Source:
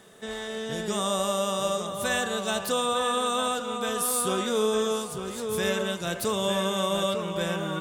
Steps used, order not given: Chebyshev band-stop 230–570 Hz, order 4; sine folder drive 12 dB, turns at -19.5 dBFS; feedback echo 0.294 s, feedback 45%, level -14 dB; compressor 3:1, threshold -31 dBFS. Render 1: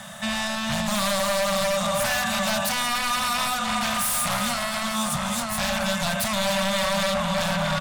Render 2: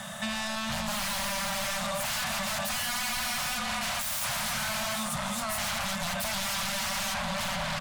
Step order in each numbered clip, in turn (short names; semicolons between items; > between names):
feedback echo > compressor > sine folder > Chebyshev band-stop; feedback echo > sine folder > Chebyshev band-stop > compressor